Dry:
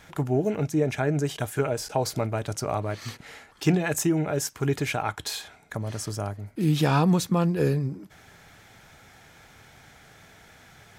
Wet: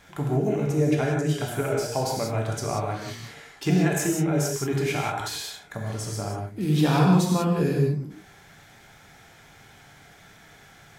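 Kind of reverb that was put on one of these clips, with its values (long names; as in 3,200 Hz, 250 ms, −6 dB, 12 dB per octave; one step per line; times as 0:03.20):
reverb whose tail is shaped and stops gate 210 ms flat, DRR −1.5 dB
level −3 dB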